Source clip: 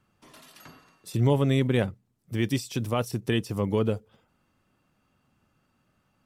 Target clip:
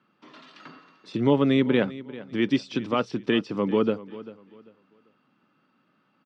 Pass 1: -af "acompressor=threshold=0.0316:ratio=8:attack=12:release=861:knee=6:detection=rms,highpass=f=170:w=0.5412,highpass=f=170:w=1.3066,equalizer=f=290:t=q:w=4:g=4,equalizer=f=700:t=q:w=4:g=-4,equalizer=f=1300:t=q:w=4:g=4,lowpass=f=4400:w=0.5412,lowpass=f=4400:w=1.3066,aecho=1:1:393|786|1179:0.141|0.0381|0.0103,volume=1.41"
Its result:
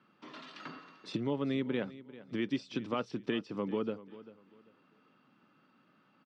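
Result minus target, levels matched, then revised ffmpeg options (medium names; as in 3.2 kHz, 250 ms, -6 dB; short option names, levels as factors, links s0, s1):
compression: peak gain reduction +14 dB
-af "highpass=f=170:w=0.5412,highpass=f=170:w=1.3066,equalizer=f=290:t=q:w=4:g=4,equalizer=f=700:t=q:w=4:g=-4,equalizer=f=1300:t=q:w=4:g=4,lowpass=f=4400:w=0.5412,lowpass=f=4400:w=1.3066,aecho=1:1:393|786|1179:0.141|0.0381|0.0103,volume=1.41"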